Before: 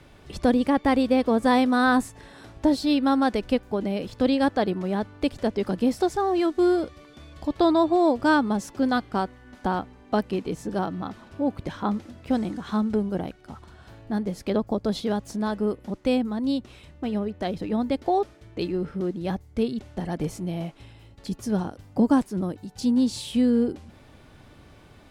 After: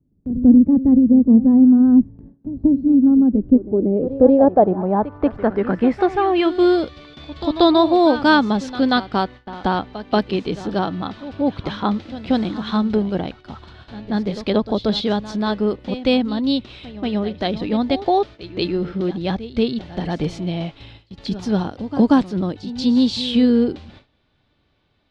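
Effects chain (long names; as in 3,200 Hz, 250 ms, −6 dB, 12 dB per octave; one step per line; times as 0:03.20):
low-pass filter sweep 230 Hz → 3,900 Hz, 0:03.25–0:06.76
echo ahead of the sound 184 ms −14 dB
noise gate with hold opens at −37 dBFS
level +5.5 dB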